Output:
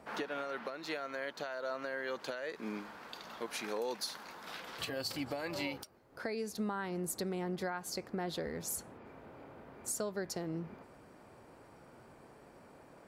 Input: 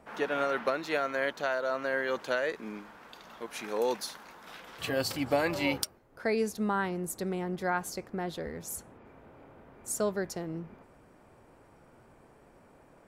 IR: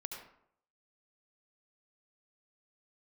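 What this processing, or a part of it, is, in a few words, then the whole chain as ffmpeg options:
broadcast voice chain: -af "highpass=frequency=89:poles=1,deesser=0.45,acompressor=threshold=-35dB:ratio=5,equalizer=frequency=4500:width_type=o:width=0.4:gain=5,alimiter=level_in=4.5dB:limit=-24dB:level=0:latency=1:release=339,volume=-4.5dB,volume=1.5dB"

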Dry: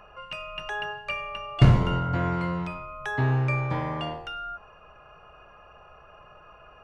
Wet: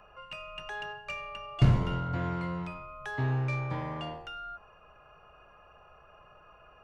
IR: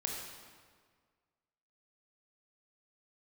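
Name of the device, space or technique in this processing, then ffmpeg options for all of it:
one-band saturation: -filter_complex "[0:a]acrossover=split=310|4300[link_01][link_02][link_03];[link_02]asoftclip=type=tanh:threshold=-24.5dB[link_04];[link_01][link_04][link_03]amix=inputs=3:normalize=0,volume=-5.5dB"

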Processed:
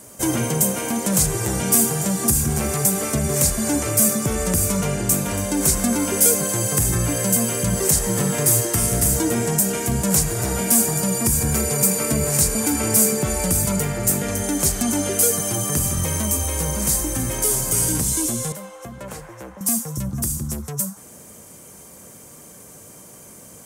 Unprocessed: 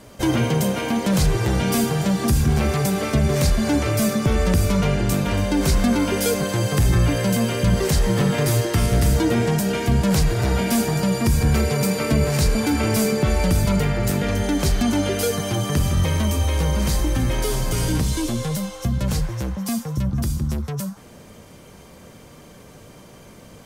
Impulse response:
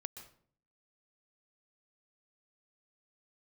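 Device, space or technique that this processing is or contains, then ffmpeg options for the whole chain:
budget condenser microphone: -filter_complex "[0:a]highpass=frequency=110:poles=1,highshelf=frequency=5700:width_type=q:width=1.5:gain=12.5,asettb=1/sr,asplit=3[link_01][link_02][link_03];[link_01]atrim=end=18.524[link_04];[link_02]atrim=start=18.52:end=19.61,asetpts=PTS-STARTPTS,afade=type=in:duration=0.004:curve=qsin,afade=type=out:start_time=1.086:duration=0.004:curve=qsin,acrossover=split=330 2900:gain=0.2 1 0.126[link_05][link_06][link_07];[link_05][link_06][link_07]amix=inputs=3:normalize=0[link_08];[link_03]atrim=start=19.606[link_09];[link_04][link_08]acrossfade=duration=0.004:curve1=hsin:curve2=qsin[link_10];[link_10][link_09]acrossfade=duration=0.004:curve1=qsin:curve2=hsin,volume=-1.5dB"

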